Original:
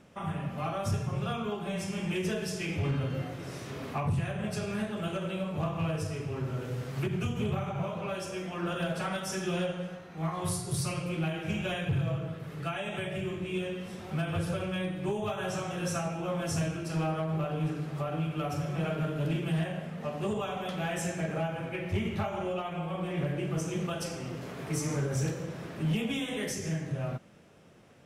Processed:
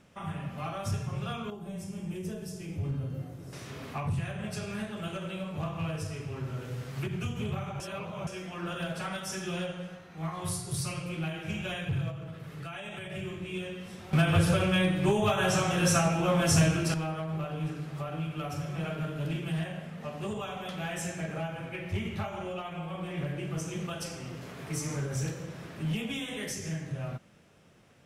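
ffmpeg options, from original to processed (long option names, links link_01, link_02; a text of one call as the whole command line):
ffmpeg -i in.wav -filter_complex "[0:a]asettb=1/sr,asplit=3[link_01][link_02][link_03];[link_01]atrim=end=1.504[link_04];[link_02]atrim=start=1.5:end=3.53,asetpts=PTS-STARTPTS,afade=type=in:duration=0.004:curve=qsin,afade=type=out:start_time=2.026:duration=0.004:curve=qsin,equalizer=frequency=2400:width=0.39:gain=-14.5[link_05];[link_03]atrim=start=3.526[link_06];[link_04][link_05]acrossfade=duration=0.004:curve1=hsin:curve2=qsin[link_07];[link_07][link_06]acrossfade=duration=0.004:curve1=qsin:curve2=hsin,asettb=1/sr,asplit=3[link_08][link_09][link_10];[link_08]atrim=end=12.104[link_11];[link_09]atrim=start=12.1:end=13.1,asetpts=PTS-STARTPTS,afade=type=in:duration=0.004:curve=qsin,afade=type=out:start_time=0.996:duration=0.004:curve=qsin,acompressor=threshold=-34dB:ratio=4:attack=3.2:release=140:knee=1:detection=peak[link_12];[link_10]atrim=start=13.096[link_13];[link_11][link_12]acrossfade=duration=0.004:curve1=hsin:curve2=qsin[link_14];[link_14][link_13]acrossfade=duration=0.004:curve1=qsin:curve2=hsin,asplit=5[link_15][link_16][link_17][link_18][link_19];[link_15]atrim=end=7.802[link_20];[link_16]atrim=start=7.798:end=8.272,asetpts=PTS-STARTPTS,areverse[link_21];[link_17]atrim=start=8.268:end=14.132[link_22];[link_18]atrim=start=14.128:end=16.942,asetpts=PTS-STARTPTS,volume=10dB[link_23];[link_19]atrim=start=16.938[link_24];[link_20][link_21]acrossfade=duration=0.004:curve1=hsin:curve2=hsin[link_25];[link_25][link_22]acrossfade=duration=0.004:curve1=hsin:curve2=hsin[link_26];[link_26][link_23]acrossfade=duration=0.004:curve1=hsin:curve2=hsin[link_27];[link_27][link_24]acrossfade=duration=0.004:curve1=hsin:curve2=hsin,equalizer=frequency=420:width=0.44:gain=-4.5" out.wav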